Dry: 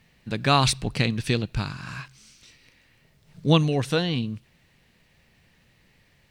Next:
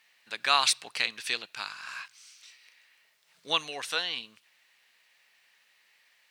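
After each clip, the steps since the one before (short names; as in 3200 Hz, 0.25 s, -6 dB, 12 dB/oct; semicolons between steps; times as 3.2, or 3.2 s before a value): HPF 1100 Hz 12 dB/oct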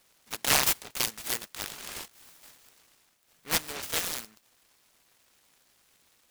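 noise-modulated delay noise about 1600 Hz, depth 0.33 ms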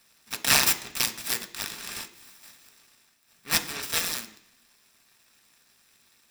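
reverb RT60 0.65 s, pre-delay 3 ms, DRR 7 dB; gain +2 dB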